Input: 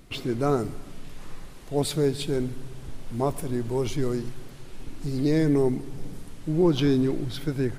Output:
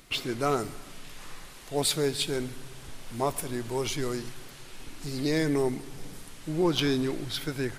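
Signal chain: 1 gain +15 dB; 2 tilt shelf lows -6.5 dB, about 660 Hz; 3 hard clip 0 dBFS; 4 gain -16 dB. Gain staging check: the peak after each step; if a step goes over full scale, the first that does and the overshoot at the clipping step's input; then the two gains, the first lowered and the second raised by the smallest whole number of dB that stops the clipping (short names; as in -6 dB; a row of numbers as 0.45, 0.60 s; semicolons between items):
+4.0, +7.5, 0.0, -16.0 dBFS; step 1, 7.5 dB; step 1 +7 dB, step 4 -8 dB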